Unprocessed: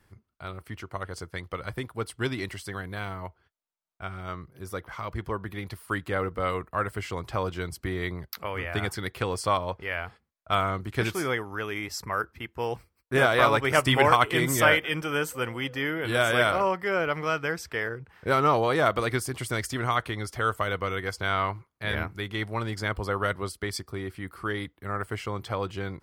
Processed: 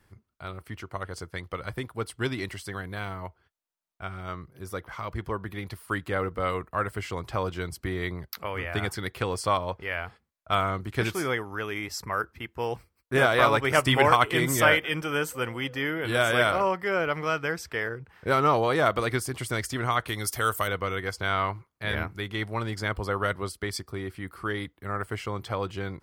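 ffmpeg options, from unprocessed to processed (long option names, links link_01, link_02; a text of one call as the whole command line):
ffmpeg -i in.wav -filter_complex "[0:a]asettb=1/sr,asplit=3[link_01][link_02][link_03];[link_01]atrim=end=20.084[link_04];[link_02]atrim=start=20.08:end=20.68,asetpts=PTS-STARTPTS,afade=type=in:duration=0.004:curve=qsin,afade=type=out:start_time=0.596:duration=0.004:curve=qsin,aemphasis=mode=production:type=75fm[link_05];[link_03]atrim=start=20.676[link_06];[link_04][link_05]acrossfade=duration=0.004:curve1=hsin:curve2=qsin[link_07];[link_07][link_06]acrossfade=duration=0.004:curve1=qsin:curve2=hsin" out.wav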